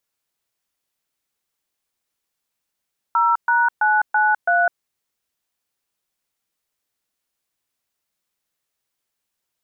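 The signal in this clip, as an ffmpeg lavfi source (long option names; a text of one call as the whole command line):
ffmpeg -f lavfi -i "aevalsrc='0.15*clip(min(mod(t,0.331),0.205-mod(t,0.331))/0.002,0,1)*(eq(floor(t/0.331),0)*(sin(2*PI*941*mod(t,0.331))+sin(2*PI*1336*mod(t,0.331)))+eq(floor(t/0.331),1)*(sin(2*PI*941*mod(t,0.331))+sin(2*PI*1477*mod(t,0.331)))+eq(floor(t/0.331),2)*(sin(2*PI*852*mod(t,0.331))+sin(2*PI*1477*mod(t,0.331)))+eq(floor(t/0.331),3)*(sin(2*PI*852*mod(t,0.331))+sin(2*PI*1477*mod(t,0.331)))+eq(floor(t/0.331),4)*(sin(2*PI*697*mod(t,0.331))+sin(2*PI*1477*mod(t,0.331))))':duration=1.655:sample_rate=44100" out.wav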